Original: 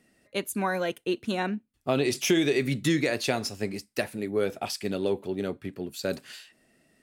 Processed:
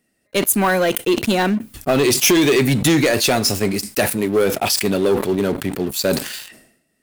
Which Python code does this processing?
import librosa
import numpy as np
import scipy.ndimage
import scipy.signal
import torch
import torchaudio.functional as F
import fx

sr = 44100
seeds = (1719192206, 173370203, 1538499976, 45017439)

y = fx.leveller(x, sr, passes=3)
y = fx.high_shelf(y, sr, hz=10000.0, db=11.0)
y = fx.sustainer(y, sr, db_per_s=80.0)
y = y * librosa.db_to_amplitude(1.5)